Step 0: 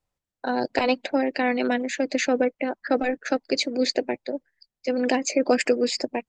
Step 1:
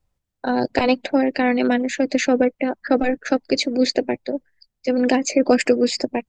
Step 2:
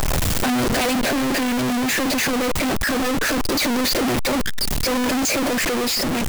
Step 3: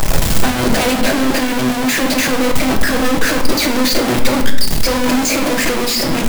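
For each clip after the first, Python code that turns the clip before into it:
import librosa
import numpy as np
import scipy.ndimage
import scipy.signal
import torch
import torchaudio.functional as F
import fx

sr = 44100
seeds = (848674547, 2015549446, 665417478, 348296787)

y1 = fx.low_shelf(x, sr, hz=190.0, db=11.0)
y1 = y1 * librosa.db_to_amplitude(2.5)
y2 = np.sign(y1) * np.sqrt(np.mean(np.square(y1)))
y2 = fx.rider(y2, sr, range_db=10, speed_s=2.0)
y3 = fx.room_shoebox(y2, sr, seeds[0], volume_m3=230.0, walls='mixed', distance_m=0.65)
y3 = y3 * librosa.db_to_amplitude(3.5)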